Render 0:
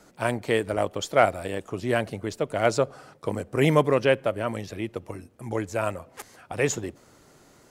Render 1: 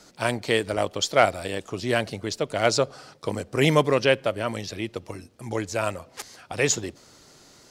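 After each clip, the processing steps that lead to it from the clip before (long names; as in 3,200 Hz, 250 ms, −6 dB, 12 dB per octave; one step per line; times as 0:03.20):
parametric band 4,700 Hz +11 dB 1.4 octaves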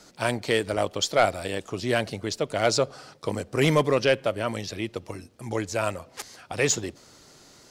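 soft clipping −9.5 dBFS, distortion −17 dB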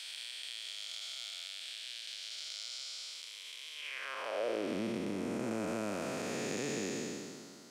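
spectrum smeared in time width 703 ms
downward compressor 4 to 1, threshold −34 dBFS, peak gain reduction 9.5 dB
high-pass filter sweep 3,600 Hz → 210 Hz, 0:03.74–0:04.78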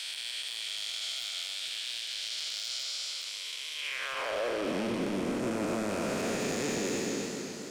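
in parallel at +2 dB: brickwall limiter −31.5 dBFS, peak gain reduction 7.5 dB
on the sum: hard clipping −28.5 dBFS, distortion −14 dB
feedback echo with a swinging delay time 264 ms, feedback 58%, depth 67 cents, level −7 dB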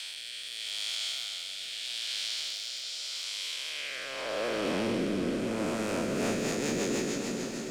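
peak hold with a rise ahead of every peak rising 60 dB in 1.51 s
rotating-speaker cabinet horn 0.8 Hz, later 6.7 Hz, at 0:05.77
echo that builds up and dies away 131 ms, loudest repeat 5, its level −17.5 dB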